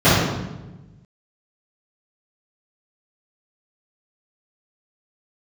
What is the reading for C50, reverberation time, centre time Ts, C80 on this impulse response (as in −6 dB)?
−2.0 dB, 1.1 s, 89 ms, 1.5 dB